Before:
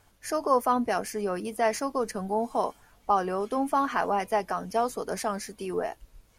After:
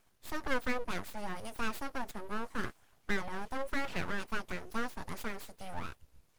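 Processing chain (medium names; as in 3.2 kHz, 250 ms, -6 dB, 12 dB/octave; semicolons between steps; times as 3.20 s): full-wave rectifier; 1.17–2.01 s: tape noise reduction on one side only encoder only; trim -7 dB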